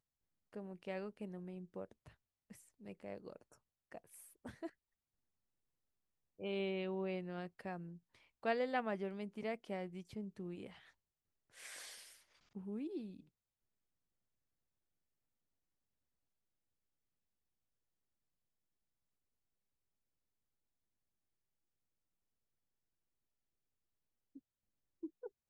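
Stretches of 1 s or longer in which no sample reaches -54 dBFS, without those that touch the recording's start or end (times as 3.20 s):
4.69–6.40 s
13.21–24.36 s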